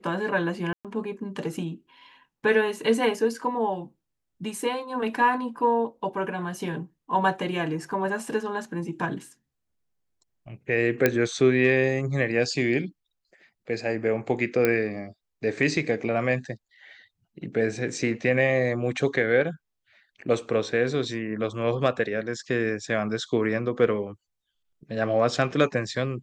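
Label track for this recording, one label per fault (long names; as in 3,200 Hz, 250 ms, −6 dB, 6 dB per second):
0.730000	0.850000	drop-out 117 ms
11.060000	11.060000	click −6 dBFS
14.650000	14.650000	click −9 dBFS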